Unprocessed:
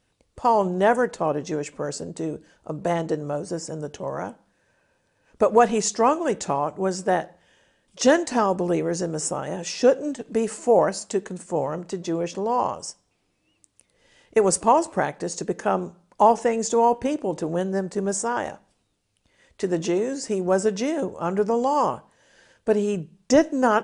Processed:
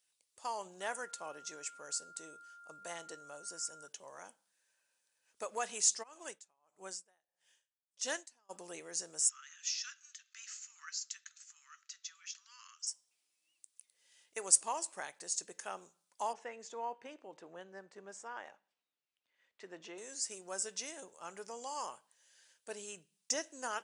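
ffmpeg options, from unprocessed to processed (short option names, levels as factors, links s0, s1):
-filter_complex "[0:a]asettb=1/sr,asplit=3[s0][s1][s2];[s0]atrim=end=0.814[s3];[s1]atrim=start=0.81:end=3.88,asetpts=PTS-STARTPTS,afade=t=in:d=0.004:c=qsin,afade=t=out:st=3.066:d=0.004:c=qsin,aeval=exprs='val(0)+0.0141*sin(2*PI*1400*n/s)':c=same[s4];[s2]atrim=start=3.876[s5];[s3][s4]acrossfade=d=0.004:c1=hsin:c2=qsin[s6];[s6][s5]acrossfade=d=0.004:c1=qsin:c2=hsin,asplit=3[s7][s8][s9];[s7]afade=t=out:st=6.02:d=0.02[s10];[s8]aeval=exprs='val(0)*pow(10,-36*(0.5-0.5*cos(2*PI*1.6*n/s))/20)':c=same,afade=t=in:st=6.02:d=0.02,afade=t=out:st=8.49:d=0.02[s11];[s9]afade=t=in:st=8.49:d=0.02[s12];[s10][s11][s12]amix=inputs=3:normalize=0,asettb=1/sr,asplit=3[s13][s14][s15];[s13]atrim=end=9.294[s16];[s14]atrim=start=9.29:end=12.87,asetpts=PTS-STARTPTS,afade=t=in:d=0.004:c=qsin,afade=t=out:st=3.576:d=0.004:c=qsin,asuperpass=centerf=3000:order=20:qfactor=0.52[s17];[s15]atrim=start=12.866[s18];[s16][s17]acrossfade=d=0.004:c1=hsin:c2=qsin[s19];[s19][s18]acrossfade=d=0.004:c1=qsin:c2=hsin,asettb=1/sr,asplit=3[s20][s21][s22];[s20]atrim=end=16.334[s23];[s21]atrim=start=16.33:end=19.98,asetpts=PTS-STARTPTS,afade=t=in:d=0.004:c=qsin,afade=t=out:st=3.646:d=0.004:c=qsin,highpass=120,lowpass=2300[s24];[s22]atrim=start=19.976[s25];[s23][s24]acrossfade=d=0.004:c1=hsin:c2=qsin[s26];[s26][s25]acrossfade=d=0.004:c1=qsin:c2=hsin,aderivative,volume=0.794"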